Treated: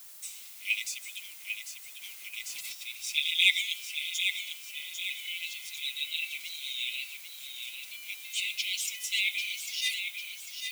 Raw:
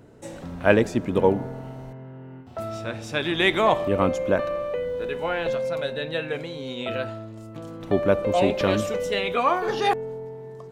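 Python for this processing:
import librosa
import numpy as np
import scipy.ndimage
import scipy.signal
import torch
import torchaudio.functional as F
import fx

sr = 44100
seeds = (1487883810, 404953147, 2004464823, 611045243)

y = fx.brickwall_highpass(x, sr, low_hz=2000.0)
y = fx.quant_dither(y, sr, seeds[0], bits=10, dither='none')
y = fx.high_shelf(y, sr, hz=4600.0, db=11.5)
y = fx.echo_feedback(y, sr, ms=797, feedback_pct=48, wet_db=-7)
y = fx.over_compress(y, sr, threshold_db=-46.0, ratio=-0.5, at=(2.01, 2.82), fade=0.02)
y = y + 0.93 * np.pad(y, (int(6.0 * sr / 1000.0), 0))[:len(y)]
y = fx.dmg_noise_colour(y, sr, seeds[1], colour='blue', level_db=-45.0)
y = y * librosa.db_to_amplitude(-4.0)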